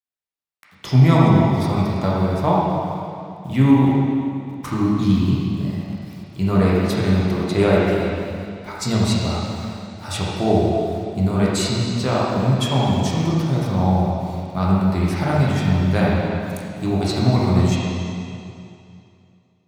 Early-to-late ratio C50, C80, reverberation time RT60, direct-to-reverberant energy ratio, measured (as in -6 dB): -3.5 dB, -1.0 dB, 2.6 s, -6.5 dB